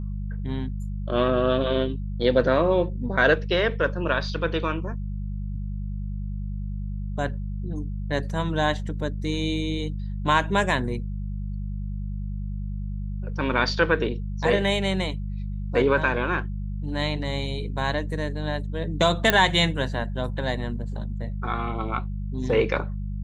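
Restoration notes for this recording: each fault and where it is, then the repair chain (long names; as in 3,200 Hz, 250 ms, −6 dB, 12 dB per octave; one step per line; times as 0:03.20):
mains hum 50 Hz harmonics 4 −30 dBFS
0:19.30: click −3 dBFS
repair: click removal
hum removal 50 Hz, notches 4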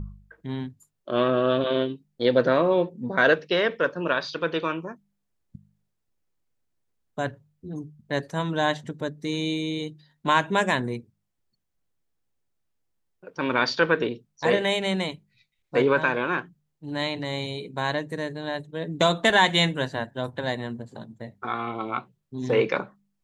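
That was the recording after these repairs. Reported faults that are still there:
none of them is left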